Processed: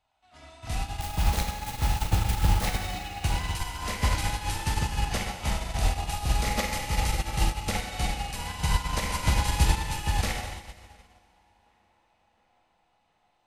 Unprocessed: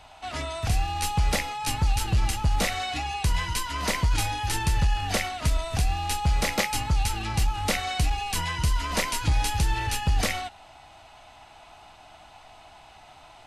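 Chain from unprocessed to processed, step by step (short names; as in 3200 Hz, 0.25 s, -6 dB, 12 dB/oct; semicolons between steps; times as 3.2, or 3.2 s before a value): 0.85–2.66 self-modulated delay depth 0.27 ms; tape echo 0.715 s, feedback 79%, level -12.5 dB, low-pass 2800 Hz; Schroeder reverb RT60 3.2 s, combs from 33 ms, DRR -2.5 dB; upward expander 2.5:1, over -34 dBFS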